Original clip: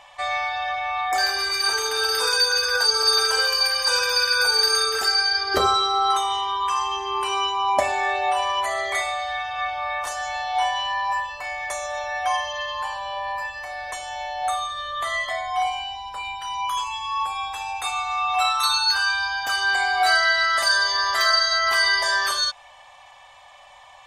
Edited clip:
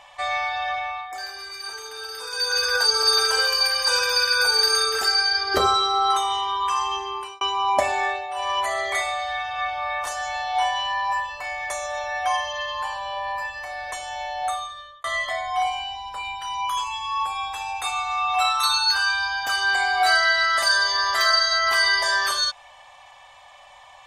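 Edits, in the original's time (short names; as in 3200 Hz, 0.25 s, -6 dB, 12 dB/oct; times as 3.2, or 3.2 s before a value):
0.77–2.61 dip -12 dB, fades 0.31 s
6.96–7.41 fade out
8.04–8.53 dip -12 dB, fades 0.24 s
14.38–15.04 fade out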